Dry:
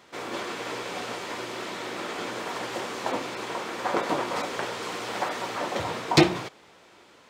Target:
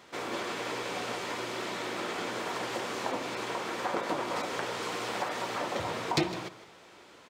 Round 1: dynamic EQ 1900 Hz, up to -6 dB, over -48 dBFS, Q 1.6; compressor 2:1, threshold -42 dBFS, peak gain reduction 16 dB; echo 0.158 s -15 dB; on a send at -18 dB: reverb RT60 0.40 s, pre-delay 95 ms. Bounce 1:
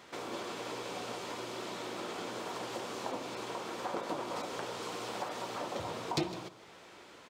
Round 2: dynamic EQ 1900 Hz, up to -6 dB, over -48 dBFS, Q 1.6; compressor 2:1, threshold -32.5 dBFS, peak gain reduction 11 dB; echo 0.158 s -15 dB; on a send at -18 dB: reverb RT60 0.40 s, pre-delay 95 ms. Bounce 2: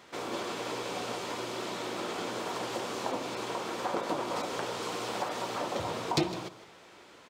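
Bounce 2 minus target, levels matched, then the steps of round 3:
2000 Hz band -3.5 dB
compressor 2:1, threshold -32.5 dBFS, peak gain reduction 11.5 dB; echo 0.158 s -15 dB; on a send at -18 dB: reverb RT60 0.40 s, pre-delay 95 ms

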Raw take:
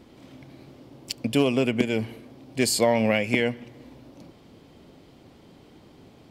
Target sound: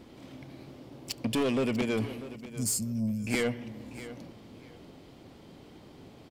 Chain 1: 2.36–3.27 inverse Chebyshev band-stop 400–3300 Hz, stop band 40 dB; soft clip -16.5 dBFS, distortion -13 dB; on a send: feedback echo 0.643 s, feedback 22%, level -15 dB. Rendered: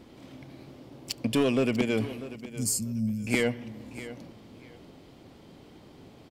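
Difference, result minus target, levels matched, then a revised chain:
soft clip: distortion -6 dB
2.36–3.27 inverse Chebyshev band-stop 400–3300 Hz, stop band 40 dB; soft clip -23 dBFS, distortion -7 dB; on a send: feedback echo 0.643 s, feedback 22%, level -15 dB

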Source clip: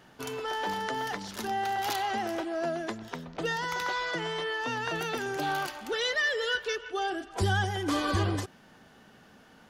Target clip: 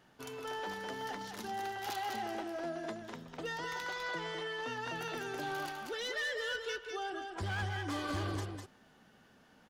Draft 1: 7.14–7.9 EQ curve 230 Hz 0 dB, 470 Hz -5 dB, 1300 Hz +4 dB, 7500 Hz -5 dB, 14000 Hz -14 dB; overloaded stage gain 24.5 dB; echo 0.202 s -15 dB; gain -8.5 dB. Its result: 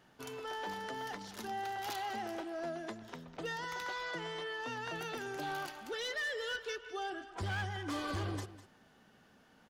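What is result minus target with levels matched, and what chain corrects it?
echo-to-direct -10 dB
7.14–7.9 EQ curve 230 Hz 0 dB, 470 Hz -5 dB, 1300 Hz +4 dB, 7500 Hz -5 dB, 14000 Hz -14 dB; overloaded stage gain 24.5 dB; echo 0.202 s -5 dB; gain -8.5 dB

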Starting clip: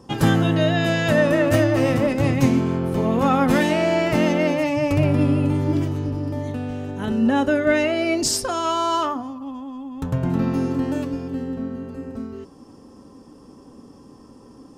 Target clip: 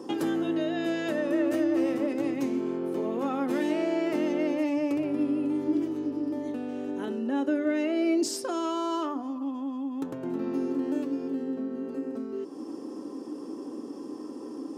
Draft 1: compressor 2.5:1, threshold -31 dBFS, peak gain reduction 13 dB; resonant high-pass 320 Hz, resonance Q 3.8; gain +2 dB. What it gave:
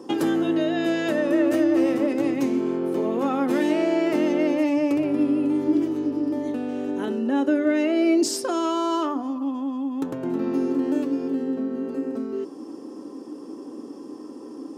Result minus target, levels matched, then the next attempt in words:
compressor: peak gain reduction -5.5 dB
compressor 2.5:1, threshold -40.5 dBFS, peak gain reduction 18.5 dB; resonant high-pass 320 Hz, resonance Q 3.8; gain +2 dB

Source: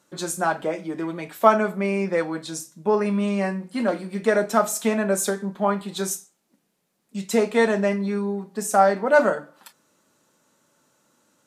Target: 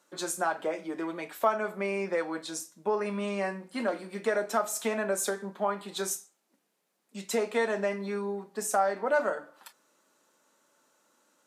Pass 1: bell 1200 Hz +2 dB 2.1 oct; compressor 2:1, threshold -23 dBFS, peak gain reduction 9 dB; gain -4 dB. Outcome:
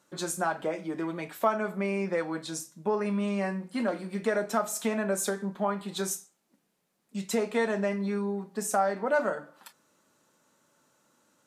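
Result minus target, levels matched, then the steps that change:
250 Hz band +4.5 dB
add first: HPF 290 Hz 12 dB/oct

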